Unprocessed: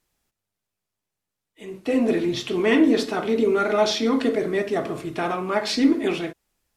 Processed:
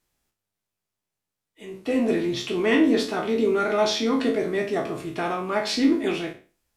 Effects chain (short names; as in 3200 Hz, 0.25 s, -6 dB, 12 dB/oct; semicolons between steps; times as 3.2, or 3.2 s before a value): spectral trails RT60 0.36 s; gain -2.5 dB